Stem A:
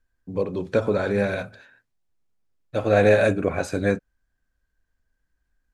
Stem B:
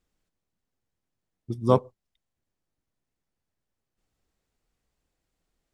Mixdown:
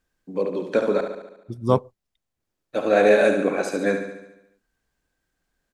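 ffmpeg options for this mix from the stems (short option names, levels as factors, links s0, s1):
-filter_complex "[0:a]highpass=f=200:w=0.5412,highpass=f=200:w=1.3066,volume=1.06,asplit=3[s0][s1][s2];[s0]atrim=end=1.01,asetpts=PTS-STARTPTS,afade=t=out:st=1.006:d=0.004:c=hsin[s3];[s1]atrim=start=1.01:end=2.4,asetpts=PTS-STARTPTS,volume=0[s4];[s2]atrim=start=2.4,asetpts=PTS-STARTPTS,afade=t=in:d=0.004:c=hsin[s5];[s3][s4][s5]concat=n=3:v=0:a=1,asplit=3[s6][s7][s8];[s7]volume=0.422[s9];[1:a]volume=1.19[s10];[s8]apad=whole_len=252980[s11];[s10][s11]sidechaincompress=threshold=0.0224:ratio=8:attack=45:release=711[s12];[s9]aecho=0:1:71|142|213|284|355|426|497|568|639:1|0.58|0.336|0.195|0.113|0.0656|0.0381|0.0221|0.0128[s13];[s6][s12][s13]amix=inputs=3:normalize=0"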